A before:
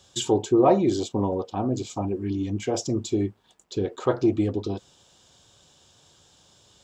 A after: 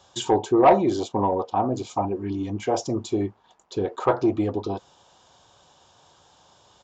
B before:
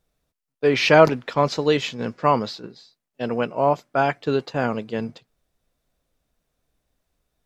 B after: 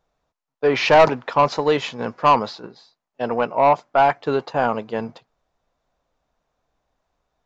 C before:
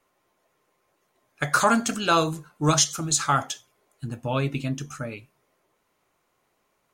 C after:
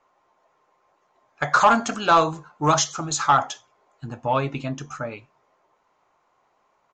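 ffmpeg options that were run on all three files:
-af "equalizer=f=900:t=o:w=1.5:g=12.5,aresample=16000,asoftclip=type=tanh:threshold=0.596,aresample=44100,volume=0.75"

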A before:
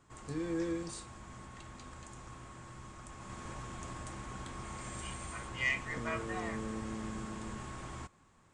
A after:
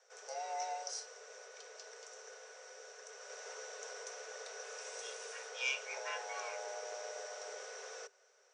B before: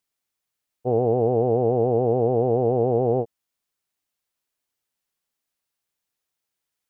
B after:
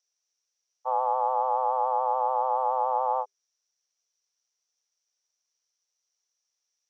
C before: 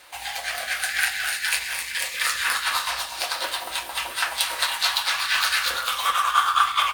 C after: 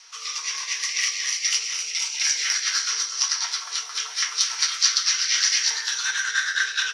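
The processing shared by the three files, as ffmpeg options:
-af "lowpass=f=5400:t=q:w=14,afreqshift=390,volume=0.531"

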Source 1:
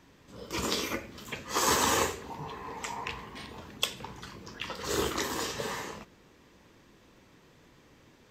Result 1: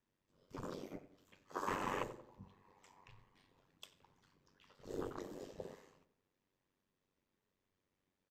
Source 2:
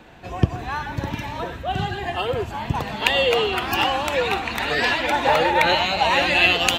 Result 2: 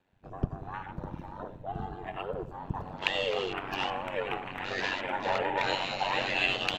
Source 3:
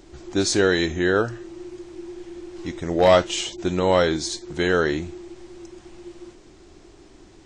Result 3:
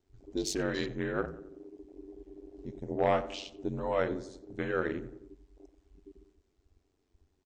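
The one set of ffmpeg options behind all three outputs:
-filter_complex "[0:a]afwtdn=0.0355,aeval=exprs='val(0)*sin(2*PI*47*n/s)':c=same,asplit=2[s0][s1];[s1]adelay=91,lowpass=f=1500:p=1,volume=0.2,asplit=2[s2][s3];[s3]adelay=91,lowpass=f=1500:p=1,volume=0.53,asplit=2[s4][s5];[s5]adelay=91,lowpass=f=1500:p=1,volume=0.53,asplit=2[s6][s7];[s7]adelay=91,lowpass=f=1500:p=1,volume=0.53,asplit=2[s8][s9];[s9]adelay=91,lowpass=f=1500:p=1,volume=0.53[s10];[s0][s2][s4][s6][s8][s10]amix=inputs=6:normalize=0,volume=0.376"

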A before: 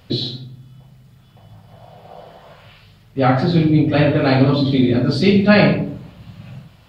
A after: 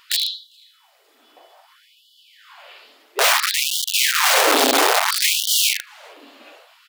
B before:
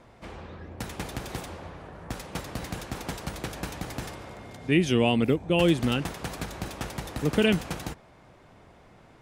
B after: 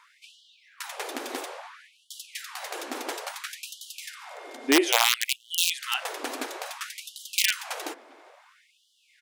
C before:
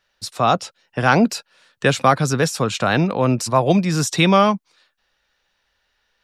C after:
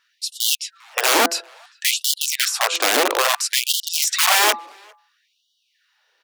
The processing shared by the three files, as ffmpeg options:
-filter_complex "[0:a]bandreject=f=168.8:t=h:w=4,bandreject=f=337.6:t=h:w=4,bandreject=f=506.4:t=h:w=4,bandreject=f=675.2:t=h:w=4,bandreject=f=844:t=h:w=4,bandreject=f=1012.8:t=h:w=4,bandreject=f=1181.6:t=h:w=4,bandreject=f=1350.4:t=h:w=4,bandreject=f=1519.2:t=h:w=4,bandreject=f=1688:t=h:w=4,bandreject=f=1856.8:t=h:w=4,bandreject=f=2025.6:t=h:w=4,acontrast=34,aeval=exprs='(mod(2.66*val(0)+1,2)-1)/2.66':c=same,asplit=2[s0][s1];[s1]adelay=400,highpass=300,lowpass=3400,asoftclip=type=hard:threshold=0.119,volume=0.0631[s2];[s0][s2]amix=inputs=2:normalize=0,afftfilt=real='re*gte(b*sr/1024,230*pow(2900/230,0.5+0.5*sin(2*PI*0.59*pts/sr)))':imag='im*gte(b*sr/1024,230*pow(2900/230,0.5+0.5*sin(2*PI*0.59*pts/sr)))':win_size=1024:overlap=0.75,volume=0.841"

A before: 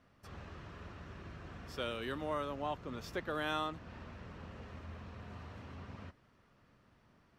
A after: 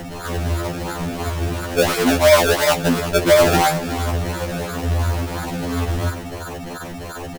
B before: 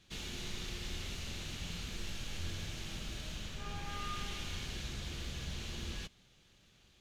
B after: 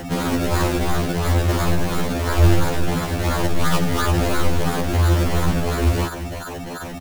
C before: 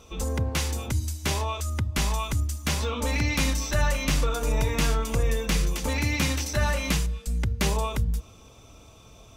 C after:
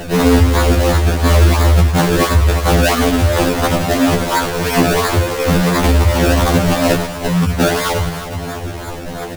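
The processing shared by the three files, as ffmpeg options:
-filter_complex "[0:a]afftfilt=real='re*pow(10,21/40*sin(2*PI*(1.4*log(max(b,1)*sr/1024/100)/log(2)-(-1.1)*(pts-256)/sr)))':imag='im*pow(10,21/40*sin(2*PI*(1.4*log(max(b,1)*sr/1024/100)/log(2)-(-1.1)*(pts-256)/sr)))':win_size=1024:overlap=0.75,firequalizer=gain_entry='entry(140,0);entry(670,5);entry(1800,-6);entry(3500,-16);entry(6800,7)':delay=0.05:min_phase=1,asplit=2[s0][s1];[s1]acompressor=threshold=0.0316:ratio=12,volume=1.12[s2];[s0][s2]amix=inputs=2:normalize=0,aeval=exprs='val(0)+0.01*sin(2*PI*4200*n/s)':c=same,acrusher=samples=30:mix=1:aa=0.000001:lfo=1:lforange=30:lforate=2.9,aecho=1:1:357:0.2,alimiter=level_in=6.31:limit=0.891:release=50:level=0:latency=1,afftfilt=real='re*2*eq(mod(b,4),0)':imag='im*2*eq(mod(b,4),0)':win_size=2048:overlap=0.75,volume=0.794"

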